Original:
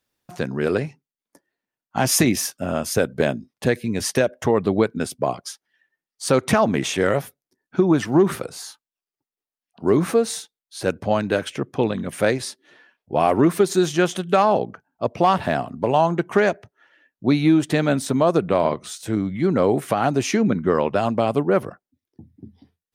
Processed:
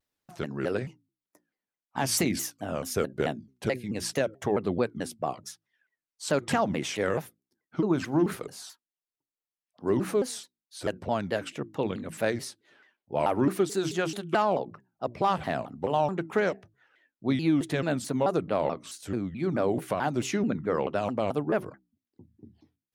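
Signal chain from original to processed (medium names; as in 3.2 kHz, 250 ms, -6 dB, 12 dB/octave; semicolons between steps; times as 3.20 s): hum notches 60/120/180/240/300/360 Hz; vibrato with a chosen wave saw down 4.6 Hz, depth 250 cents; trim -8 dB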